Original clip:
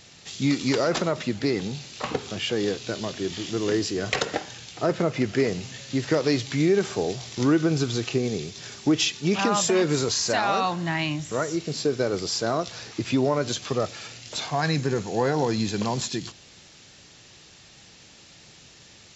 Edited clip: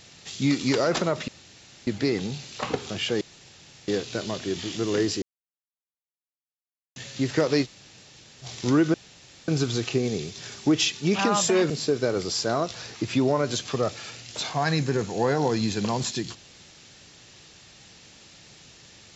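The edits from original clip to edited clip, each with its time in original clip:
1.28 insert room tone 0.59 s
2.62 insert room tone 0.67 s
3.96–5.7 mute
6.38–7.18 room tone, crossfade 0.06 s
7.68 insert room tone 0.54 s
9.9–11.67 cut

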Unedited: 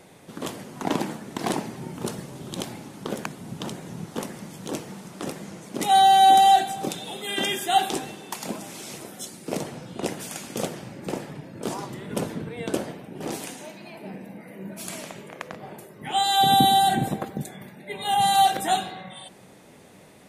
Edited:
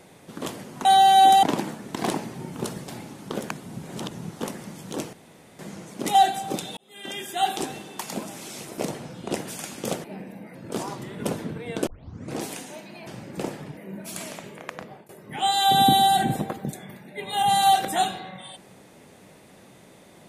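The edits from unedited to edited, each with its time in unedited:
2.3–2.63 cut
3.58–3.86 reverse
4.88–5.34 room tone
5.9–6.48 move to 0.85
7.1–8.07 fade in
9.11–9.5 cut
10.76–11.46 swap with 13.98–14.49
12.78 tape start 0.53 s
15.54–15.81 fade out, to -19.5 dB

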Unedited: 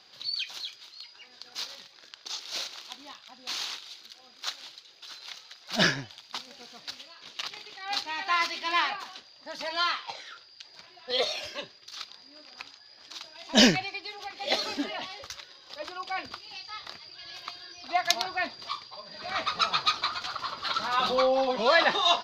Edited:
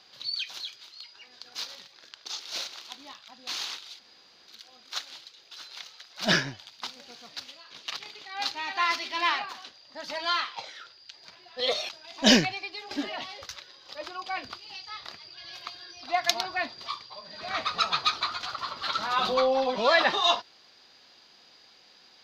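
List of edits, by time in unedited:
3.99 insert room tone 0.49 s
11.4–13.2 cut
14.22–14.72 cut

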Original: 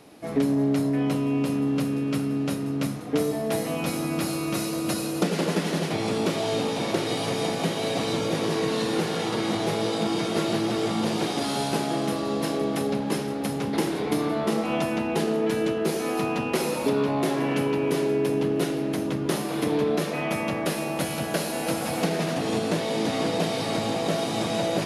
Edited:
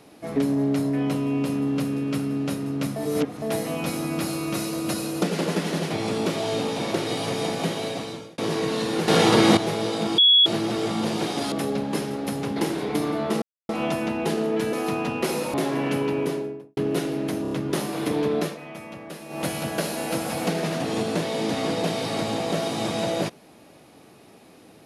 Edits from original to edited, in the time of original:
2.96–3.42 reverse
7.72–8.38 fade out
9.08–9.57 gain +10 dB
10.18–10.46 bleep 3360 Hz -12 dBFS
11.52–12.69 cut
14.59 insert silence 0.27 s
15.63–16.04 cut
16.85–17.19 cut
17.77–18.42 studio fade out
19.07 stutter 0.03 s, 4 plays
19.99–20.99 dip -11.5 dB, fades 0.15 s

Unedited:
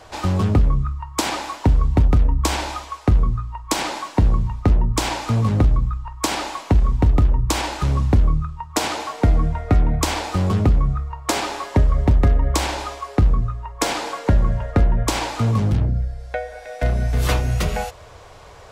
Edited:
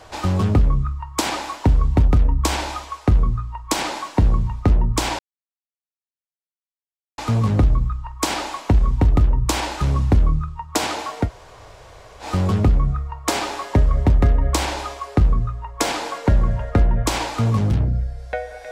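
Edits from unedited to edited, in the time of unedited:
5.19 insert silence 1.99 s
9.26–10.25 room tone, crossfade 0.10 s

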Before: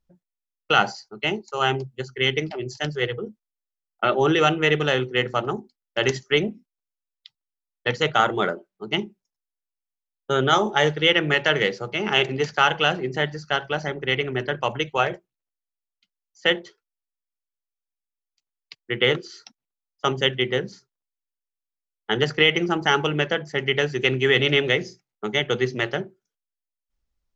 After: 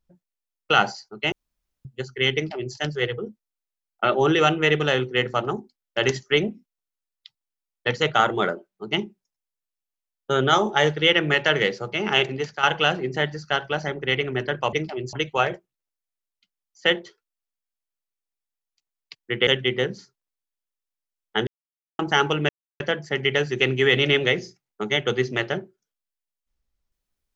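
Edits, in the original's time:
1.32–1.85 room tone
2.35–2.75 copy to 14.73
12.17–12.63 fade out, to -10 dB
19.07–20.21 cut
22.21–22.73 mute
23.23 insert silence 0.31 s

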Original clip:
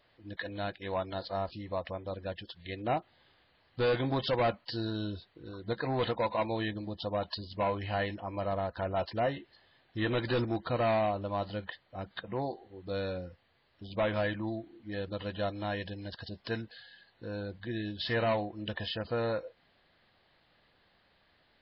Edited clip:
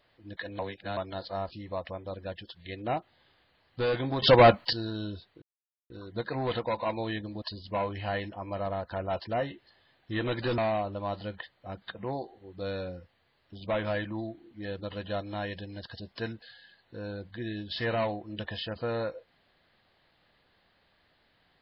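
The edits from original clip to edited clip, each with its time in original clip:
0.59–0.97 reverse
4.22–4.73 gain +11.5 dB
5.42 insert silence 0.48 s
6.94–7.28 cut
10.44–10.87 cut

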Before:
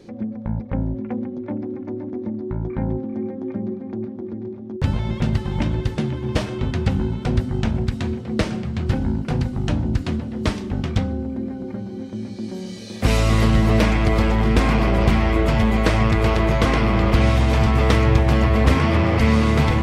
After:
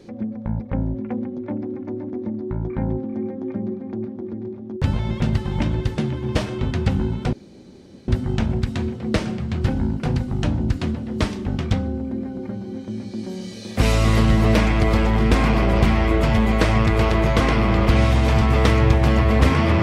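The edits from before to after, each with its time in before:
7.33 insert room tone 0.75 s

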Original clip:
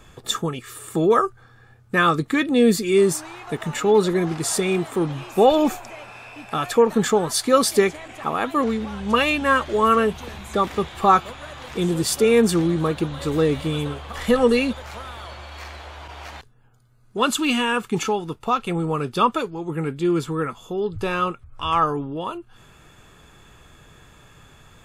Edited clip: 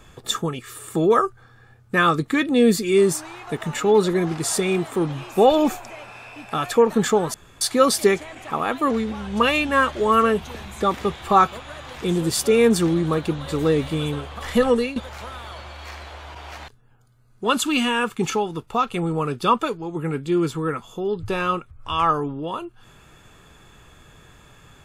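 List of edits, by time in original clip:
7.34 insert room tone 0.27 s
14.39–14.69 fade out, to -13 dB

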